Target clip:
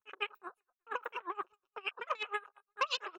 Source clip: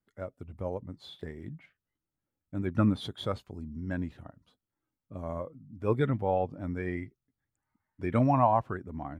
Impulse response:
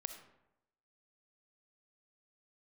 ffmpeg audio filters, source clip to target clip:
-filter_complex "[0:a]asplit=2[link_01][link_02];[link_02]adelay=540,lowpass=frequency=3600:poles=1,volume=-20.5dB,asplit=2[link_03][link_04];[link_04]adelay=540,lowpass=frequency=3600:poles=1,volume=0.18[link_05];[link_01][link_03][link_05]amix=inputs=3:normalize=0[link_06];[1:a]atrim=start_sample=2205,afade=type=out:start_time=0.14:duration=0.01,atrim=end_sample=6615[link_07];[link_06][link_07]afir=irnorm=-1:irlink=0,asetrate=70004,aresample=44100,atempo=0.629961,tiltshelf=frequency=1500:gain=5.5,acompressor=threshold=-28dB:ratio=20,aecho=1:1:2.2:0.6,asetrate=127449,aresample=44100,afwtdn=0.01,equalizer=frequency=240:width=1.1:gain=-7.5,aeval=exprs='val(0)*pow(10,-28*(0.5-0.5*cos(2*PI*8.5*n/s))/20)':channel_layout=same,volume=3.5dB"

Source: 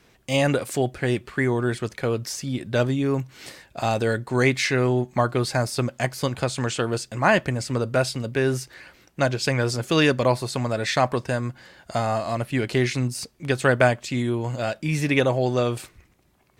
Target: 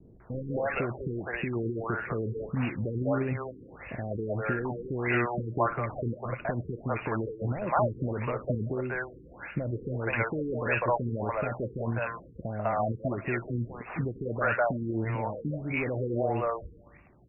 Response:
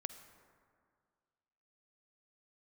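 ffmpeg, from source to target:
-filter_complex "[0:a]asetrate=42336,aresample=44100,acrossover=split=560|1500[link_01][link_02][link_03];[link_01]acompressor=threshold=-33dB:ratio=6[link_04];[link_04][link_02][link_03]amix=inputs=3:normalize=0,aexciter=amount=14.6:drive=8.4:freq=6300,volume=15.5dB,asoftclip=hard,volume=-15.5dB,alimiter=limit=-22.5dB:level=0:latency=1:release=21,highshelf=frequency=5000:gain=9.5,acrossover=split=470|1600[link_05][link_06][link_07];[link_06]adelay=200[link_08];[link_07]adelay=260[link_09];[link_05][link_08][link_09]amix=inputs=3:normalize=0,asplit=2[link_10][link_11];[1:a]atrim=start_sample=2205,asetrate=88200,aresample=44100[link_12];[link_11][link_12]afir=irnorm=-1:irlink=0,volume=5dB[link_13];[link_10][link_13]amix=inputs=2:normalize=0,afftfilt=real='re*lt(b*sr/1024,470*pow(2900/470,0.5+0.5*sin(2*PI*1.6*pts/sr)))':imag='im*lt(b*sr/1024,470*pow(2900/470,0.5+0.5*sin(2*PI*1.6*pts/sr)))':win_size=1024:overlap=0.75,volume=3dB"

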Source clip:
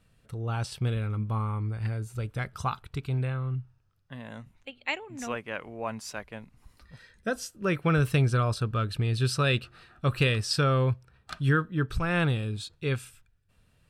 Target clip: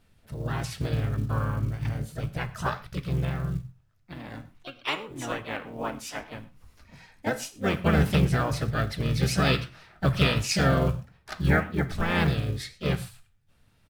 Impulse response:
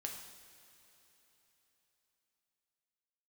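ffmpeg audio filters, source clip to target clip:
-filter_complex "[0:a]bandreject=frequency=60:width_type=h:width=6,bandreject=frequency=120:width_type=h:width=6,bandreject=frequency=180:width_type=h:width=6,asplit=4[link_01][link_02][link_03][link_04];[link_02]asetrate=22050,aresample=44100,atempo=2,volume=-4dB[link_05];[link_03]asetrate=52444,aresample=44100,atempo=0.840896,volume=-6dB[link_06];[link_04]asetrate=58866,aresample=44100,atempo=0.749154,volume=-5dB[link_07];[link_01][link_05][link_06][link_07]amix=inputs=4:normalize=0,acrusher=bits=8:mode=log:mix=0:aa=0.000001,flanger=delay=5.4:depth=8.6:regen=78:speed=1.7:shape=sinusoidal,asplit=2[link_08][link_09];[1:a]atrim=start_sample=2205,afade=type=out:start_time=0.18:duration=0.01,atrim=end_sample=8379[link_10];[link_09][link_10]afir=irnorm=-1:irlink=0,volume=-3dB[link_11];[link_08][link_11]amix=inputs=2:normalize=0"

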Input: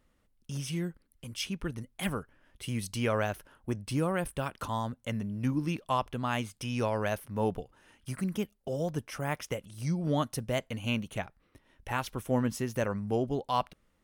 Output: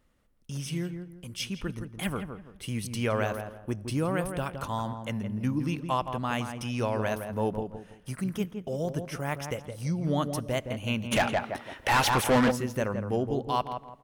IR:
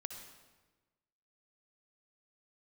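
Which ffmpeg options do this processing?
-filter_complex "[0:a]asplit=2[link_01][link_02];[link_02]adelay=166,lowpass=frequency=1400:poles=1,volume=-6.5dB,asplit=2[link_03][link_04];[link_04]adelay=166,lowpass=frequency=1400:poles=1,volume=0.32,asplit=2[link_05][link_06];[link_06]adelay=166,lowpass=frequency=1400:poles=1,volume=0.32,asplit=2[link_07][link_08];[link_08]adelay=166,lowpass=frequency=1400:poles=1,volume=0.32[link_09];[link_01][link_03][link_05][link_07][link_09]amix=inputs=5:normalize=0,asplit=3[link_10][link_11][link_12];[link_10]afade=type=out:start_time=11.11:duration=0.02[link_13];[link_11]asplit=2[link_14][link_15];[link_15]highpass=frequency=720:poles=1,volume=29dB,asoftclip=type=tanh:threshold=-15.5dB[link_16];[link_14][link_16]amix=inputs=2:normalize=0,lowpass=frequency=5300:poles=1,volume=-6dB,afade=type=in:start_time=11.11:duration=0.02,afade=type=out:start_time=12.5:duration=0.02[link_17];[link_12]afade=type=in:start_time=12.5:duration=0.02[link_18];[link_13][link_17][link_18]amix=inputs=3:normalize=0,asplit=2[link_19][link_20];[1:a]atrim=start_sample=2205[link_21];[link_20][link_21]afir=irnorm=-1:irlink=0,volume=-16dB[link_22];[link_19][link_22]amix=inputs=2:normalize=0"

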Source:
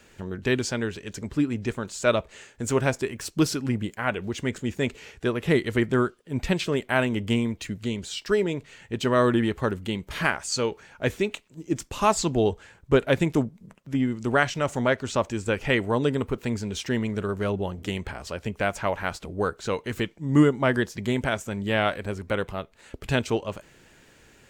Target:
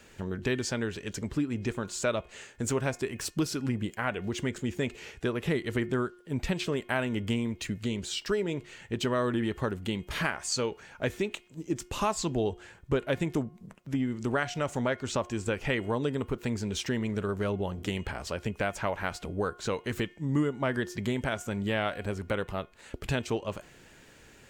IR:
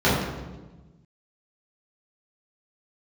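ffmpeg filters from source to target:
-af "bandreject=frequency=357.8:width_type=h:width=4,bandreject=frequency=715.6:width_type=h:width=4,bandreject=frequency=1073.4:width_type=h:width=4,bandreject=frequency=1431.2:width_type=h:width=4,bandreject=frequency=1789:width_type=h:width=4,bandreject=frequency=2146.8:width_type=h:width=4,bandreject=frequency=2504.6:width_type=h:width=4,bandreject=frequency=2862.4:width_type=h:width=4,bandreject=frequency=3220.2:width_type=h:width=4,acompressor=threshold=-28dB:ratio=2.5"

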